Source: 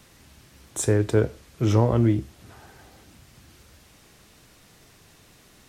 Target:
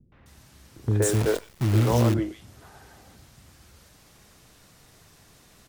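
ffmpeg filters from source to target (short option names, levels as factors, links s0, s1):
-filter_complex "[0:a]acrossover=split=320|2600[s0][s1][s2];[s1]adelay=120[s3];[s2]adelay=260[s4];[s0][s3][s4]amix=inputs=3:normalize=0,asettb=1/sr,asplit=3[s5][s6][s7];[s5]atrim=end=1.024[s8];[s6]atrim=start=1.02:end=2.14,asetpts=PTS-STARTPTS,afade=t=in:d=0.004:c=qsin,afade=t=out:st=1.116:d=0.004:c=qsin,acrusher=bits=6:dc=4:mix=0:aa=0.000001[s9];[s7]atrim=start=2.136[s10];[s8][s9]acrossfade=d=0.004:c1=hsin:c2=qsin[s11];[s11][s10]acrossfade=d=0.004:c1=qsin:c2=hsin"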